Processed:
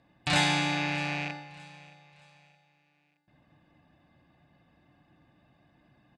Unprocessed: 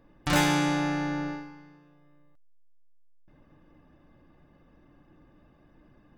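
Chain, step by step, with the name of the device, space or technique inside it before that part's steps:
drawn EQ curve 120 Hz 0 dB, 430 Hz −10 dB, 4,000 Hz +7 dB, 5,900 Hz −4 dB, 9,000 Hz +9 dB
car door speaker with a rattle (loose part that buzzes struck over −40 dBFS, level −22 dBFS; loudspeaker in its box 100–7,300 Hz, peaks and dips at 720 Hz +9 dB, 1,300 Hz −5 dB, 3,200 Hz −4 dB)
repeating echo 620 ms, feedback 36%, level −20 dB

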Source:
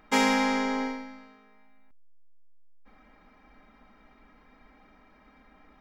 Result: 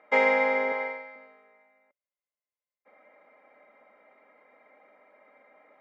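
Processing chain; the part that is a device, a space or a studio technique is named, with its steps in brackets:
tin-can telephone (band-pass filter 450–2,100 Hz; hollow resonant body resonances 560/2,100 Hz, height 15 dB, ringing for 30 ms)
0:00.72–0:01.16: meter weighting curve A
level −2 dB

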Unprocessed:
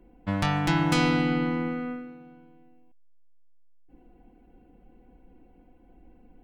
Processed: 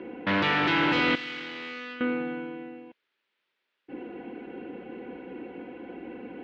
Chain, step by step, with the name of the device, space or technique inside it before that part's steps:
overdrive pedal into a guitar cabinet (mid-hump overdrive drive 41 dB, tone 5,900 Hz, clips at −7 dBFS; loudspeaker in its box 110–3,400 Hz, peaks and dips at 160 Hz −4 dB, 390 Hz +4 dB, 730 Hz −9 dB, 1,100 Hz −5 dB)
0:01.15–0:02.01: first-order pre-emphasis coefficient 0.9
level −8.5 dB

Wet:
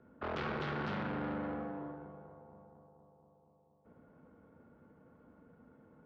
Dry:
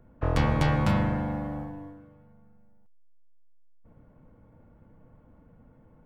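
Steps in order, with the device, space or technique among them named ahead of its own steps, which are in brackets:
analogue delay pedal into a guitar amplifier (bucket-brigade delay 236 ms, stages 2,048, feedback 76%, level −18 dB; tube saturation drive 35 dB, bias 0.6; loudspeaker in its box 110–4,400 Hz, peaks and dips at 120 Hz −8 dB, 250 Hz +3 dB, 410 Hz +7 dB, 1,400 Hz +8 dB)
level −1 dB

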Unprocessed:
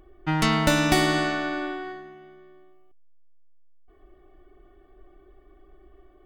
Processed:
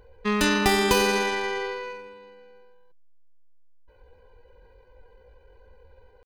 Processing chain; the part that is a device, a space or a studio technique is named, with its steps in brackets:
chipmunk voice (pitch shifter +5 semitones)

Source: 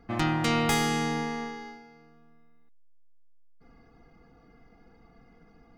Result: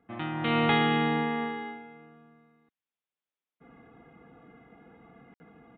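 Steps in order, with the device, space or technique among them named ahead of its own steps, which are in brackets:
call with lost packets (high-pass filter 120 Hz 12 dB per octave; downsampling to 8,000 Hz; automatic gain control gain up to 14 dB; dropped packets of 60 ms random)
level −9 dB

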